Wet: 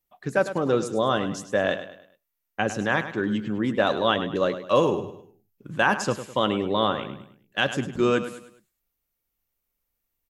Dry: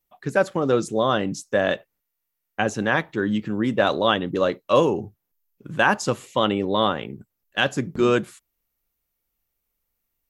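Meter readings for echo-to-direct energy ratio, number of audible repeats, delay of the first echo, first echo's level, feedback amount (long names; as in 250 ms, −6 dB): −11.0 dB, 3, 103 ms, −11.5 dB, 39%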